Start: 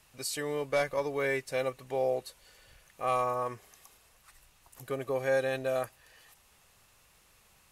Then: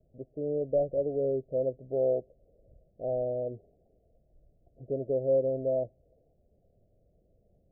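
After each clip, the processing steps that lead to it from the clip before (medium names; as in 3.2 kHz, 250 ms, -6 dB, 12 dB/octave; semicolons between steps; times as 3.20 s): steep low-pass 680 Hz 96 dB/octave; trim +3 dB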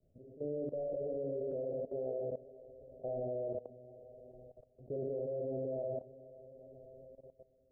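echo that smears into a reverb 491 ms, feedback 51%, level -14 dB; gated-style reverb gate 250 ms flat, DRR 0 dB; level held to a coarse grid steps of 17 dB; trim -3.5 dB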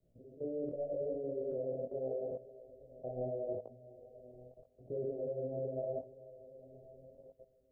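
chorus 0.8 Hz, delay 17 ms, depth 7.4 ms; trim +2.5 dB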